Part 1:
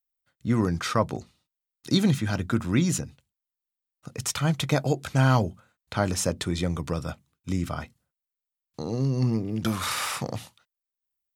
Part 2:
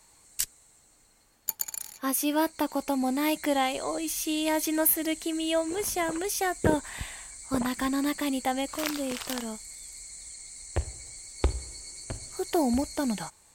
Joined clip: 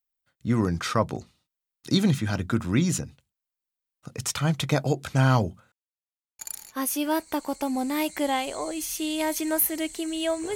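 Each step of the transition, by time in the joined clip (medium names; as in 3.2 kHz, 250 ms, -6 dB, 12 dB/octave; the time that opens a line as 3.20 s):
part 1
5.72–6.39 s: mute
6.39 s: go over to part 2 from 1.66 s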